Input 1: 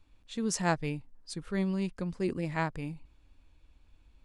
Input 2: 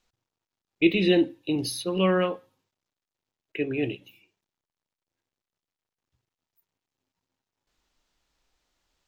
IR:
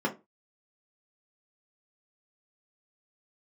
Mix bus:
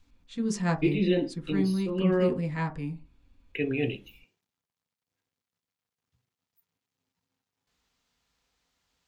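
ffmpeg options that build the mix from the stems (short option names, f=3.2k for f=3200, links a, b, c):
-filter_complex "[0:a]highshelf=f=9.2k:g=-6,volume=-2dB,asplit=3[a][b][c];[b]volume=-10.5dB[d];[1:a]highpass=54,volume=0.5dB,asplit=2[e][f];[f]volume=-17.5dB[g];[c]apad=whole_len=400315[h];[e][h]sidechaincompress=threshold=-43dB:ratio=8:attack=38:release=588[i];[2:a]atrim=start_sample=2205[j];[d][g]amix=inputs=2:normalize=0[k];[k][j]afir=irnorm=-1:irlink=0[l];[a][i][l]amix=inputs=3:normalize=0"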